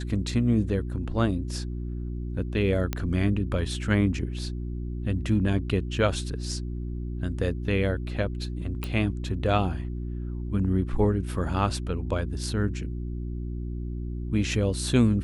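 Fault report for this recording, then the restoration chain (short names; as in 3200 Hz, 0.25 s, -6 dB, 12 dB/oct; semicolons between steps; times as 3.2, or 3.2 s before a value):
hum 60 Hz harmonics 6 -32 dBFS
2.93 pop -13 dBFS
8.84 pop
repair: de-click; de-hum 60 Hz, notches 6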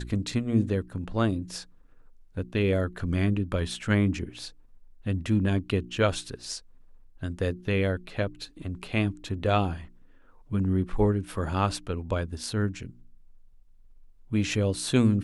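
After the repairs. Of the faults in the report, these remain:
none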